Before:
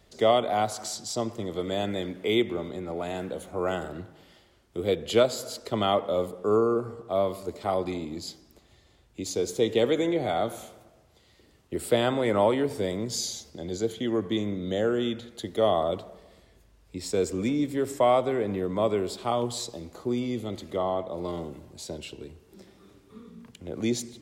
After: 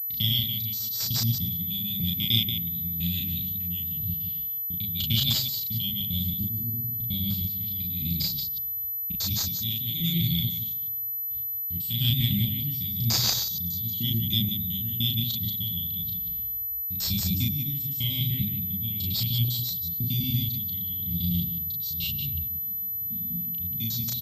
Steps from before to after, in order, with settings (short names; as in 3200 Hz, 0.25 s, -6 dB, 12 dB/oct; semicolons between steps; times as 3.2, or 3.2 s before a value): local time reversal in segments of 0.1 s; gate with hold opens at -48 dBFS; elliptic band-stop 160–3400 Hz, stop band 50 dB; low-pass opened by the level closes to 1900 Hz, open at -37 dBFS; in parallel at 0 dB: compressor, threshold -46 dBFS, peak gain reduction 15.5 dB; on the sum: HPF 45 Hz; chopper 1 Hz, depth 60%, duty 45%; on a send: loudspeakers at several distances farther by 12 m -1 dB, 63 m -7 dB; on the sum: pulse-width modulation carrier 12000 Hz; gain +8.5 dB